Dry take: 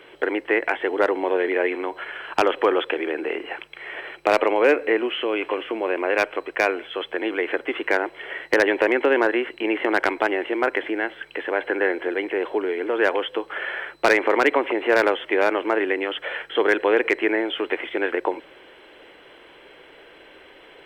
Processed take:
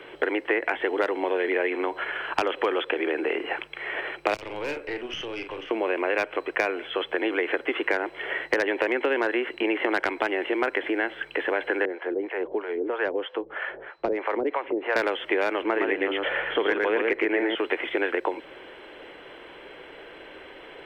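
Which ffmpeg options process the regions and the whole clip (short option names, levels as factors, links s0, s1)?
-filter_complex "[0:a]asettb=1/sr,asplit=3[s0][s1][s2];[s0]atrim=end=4.344[s3];[s1]atrim=start=4.34:end=5.71,asetpts=PTS-STARTPTS,afade=t=in:d=0.004:c=qsin,afade=t=out:st=1.366:d=0.004:c=qsin,asplit=2[s4][s5];[s5]adelay=42,volume=0.398[s6];[s4][s6]amix=inputs=2:normalize=0,atrim=end_sample=60417,acrossover=split=180|3000[s7][s8][s9];[s8]acompressor=threshold=0.00708:ratio=2:attack=3.2:release=140:knee=2.83:detection=peak[s10];[s7][s10][s9]amix=inputs=3:normalize=0,aeval=exprs='(tanh(14.1*val(0)+0.7)-tanh(0.7))/14.1':c=same[s11];[s2]atrim=start=5.706[s12];[s3][s11]acrossfade=d=0.004:c1=hsin:c2=qsin[s13];[s13][s12]acrossfade=d=0.004:c1=qsin:c2=hsin,asettb=1/sr,asplit=3[s14][s15][s16];[s14]atrim=end=11.854[s17];[s15]atrim=start=11.85:end=14.96,asetpts=PTS-STARTPTS,afade=t=in:d=0.004:c=qsin,afade=t=out:st=3.106:d=0.004:c=qsin,lowpass=f=6300:w=0.5412,lowpass=f=6300:w=1.3066,highshelf=f=2100:g=-10,acrossover=split=580[s18][s19];[s18]aeval=exprs='val(0)*(1-1/2+1/2*cos(2*PI*3.1*n/s))':c=same[s20];[s19]aeval=exprs='val(0)*(1-1/2-1/2*cos(2*PI*3.1*n/s))':c=same[s21];[s20][s21]amix=inputs=2:normalize=0[s22];[s16]atrim=start=14.956[s23];[s17][s22]acrossfade=d=0.004:c1=hsin:c2=qsin[s24];[s24][s23]acrossfade=d=0.004:c1=qsin:c2=hsin,asettb=1/sr,asplit=3[s25][s26][s27];[s25]atrim=end=15.624[s28];[s26]atrim=start=15.62:end=17.55,asetpts=PTS-STARTPTS,afade=t=in:d=0.004:c=qsin,afade=t=out:st=1.926:d=0.004:c=qsin,bass=f=250:g=6,treble=f=4000:g=-11,aecho=1:1:115:0.668,atrim=end_sample=85113[s29];[s27]atrim=start=17.546[s30];[s28][s29]acrossfade=d=0.004:c1=hsin:c2=qsin[s31];[s31][s30]acrossfade=d=0.004:c1=qsin:c2=hsin,acrossover=split=260|2200[s32][s33][s34];[s32]acompressor=threshold=0.00501:ratio=4[s35];[s33]acompressor=threshold=0.0398:ratio=4[s36];[s34]acompressor=threshold=0.0224:ratio=4[s37];[s35][s36][s37]amix=inputs=3:normalize=0,highshelf=f=4500:g=-8,volume=1.58"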